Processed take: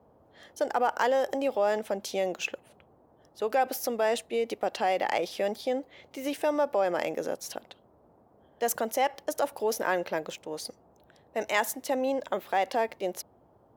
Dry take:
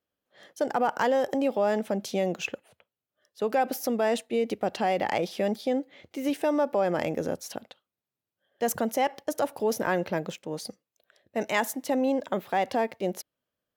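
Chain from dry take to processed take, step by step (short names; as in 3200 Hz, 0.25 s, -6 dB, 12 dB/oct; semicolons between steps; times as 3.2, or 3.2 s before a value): tone controls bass -15 dB, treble +1 dB; band noise 55–820 Hz -61 dBFS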